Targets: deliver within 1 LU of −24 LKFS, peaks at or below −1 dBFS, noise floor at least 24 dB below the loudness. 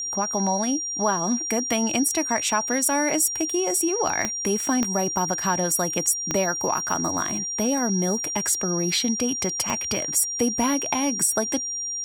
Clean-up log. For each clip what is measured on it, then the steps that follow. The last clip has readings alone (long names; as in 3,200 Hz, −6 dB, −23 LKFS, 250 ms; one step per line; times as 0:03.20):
number of clicks 4; interfering tone 5,700 Hz; level of the tone −27 dBFS; integrated loudness −23.0 LKFS; sample peak −8.5 dBFS; target loudness −24.0 LKFS
→ click removal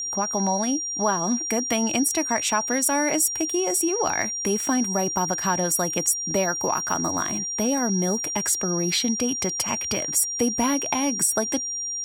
number of clicks 2; interfering tone 5,700 Hz; level of the tone −27 dBFS
→ notch filter 5,700 Hz, Q 30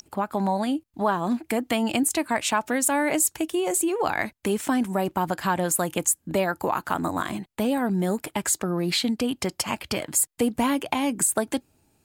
interfering tone none found; integrated loudness −25.0 LKFS; sample peak −9.0 dBFS; target loudness −24.0 LKFS
→ level +1 dB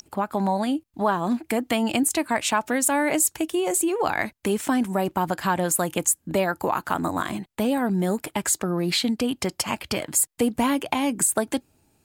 integrated loudness −24.0 LKFS; sample peak −8.0 dBFS; background noise floor −67 dBFS